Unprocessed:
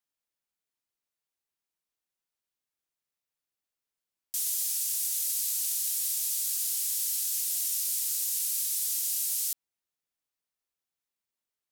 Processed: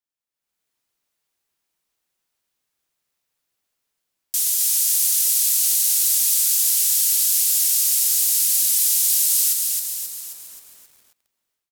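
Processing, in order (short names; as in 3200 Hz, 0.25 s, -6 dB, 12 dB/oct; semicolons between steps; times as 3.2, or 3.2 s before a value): AGC gain up to 16.5 dB; on a send: feedback echo 0.403 s, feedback 16%, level -15 dB; on the sum: lo-fi delay 0.266 s, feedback 55%, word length 7-bit, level -3.5 dB; gain -5 dB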